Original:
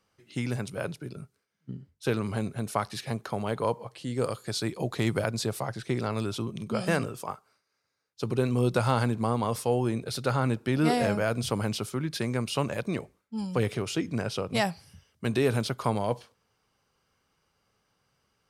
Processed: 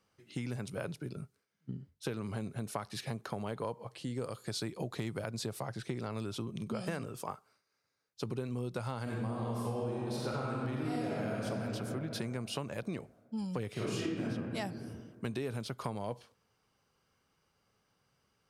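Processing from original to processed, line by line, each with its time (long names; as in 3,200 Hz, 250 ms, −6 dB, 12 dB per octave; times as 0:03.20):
0:09.02–0:11.44: thrown reverb, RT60 2.5 s, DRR −5 dB
0:13.73–0:14.21: thrown reverb, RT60 1.5 s, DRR −11.5 dB
whole clip: low-shelf EQ 260 Hz +5 dB; downward compressor 6 to 1, threshold −30 dBFS; low-shelf EQ 84 Hz −7.5 dB; level −3 dB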